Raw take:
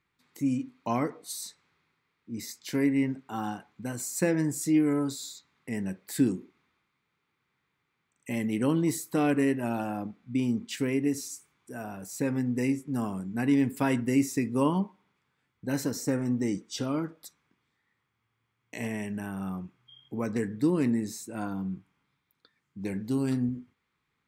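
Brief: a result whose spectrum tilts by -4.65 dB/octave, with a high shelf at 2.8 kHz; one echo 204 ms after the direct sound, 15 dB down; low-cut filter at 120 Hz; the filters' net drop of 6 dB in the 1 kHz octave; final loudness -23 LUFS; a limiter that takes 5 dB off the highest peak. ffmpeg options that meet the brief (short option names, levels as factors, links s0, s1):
-af "highpass=120,equalizer=f=1000:t=o:g=-9,highshelf=f=2800:g=6,alimiter=limit=0.119:level=0:latency=1,aecho=1:1:204:0.178,volume=2.51"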